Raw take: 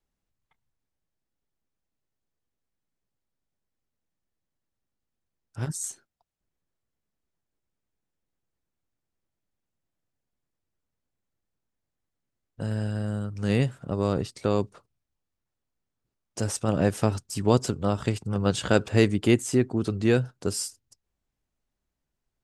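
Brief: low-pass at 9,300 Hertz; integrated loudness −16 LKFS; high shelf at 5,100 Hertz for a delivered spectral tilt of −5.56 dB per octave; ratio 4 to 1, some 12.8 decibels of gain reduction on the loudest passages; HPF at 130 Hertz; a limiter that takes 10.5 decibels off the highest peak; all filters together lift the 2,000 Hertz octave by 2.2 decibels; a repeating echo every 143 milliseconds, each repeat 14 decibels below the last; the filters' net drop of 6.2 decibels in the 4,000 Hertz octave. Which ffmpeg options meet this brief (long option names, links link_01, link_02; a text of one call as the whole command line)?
ffmpeg -i in.wav -af "highpass=130,lowpass=9300,equalizer=frequency=2000:width_type=o:gain=6,equalizer=frequency=4000:width_type=o:gain=-8,highshelf=frequency=5100:gain=-7,acompressor=threshold=-31dB:ratio=4,alimiter=level_in=2.5dB:limit=-24dB:level=0:latency=1,volume=-2.5dB,aecho=1:1:143|286:0.2|0.0399,volume=23.5dB" out.wav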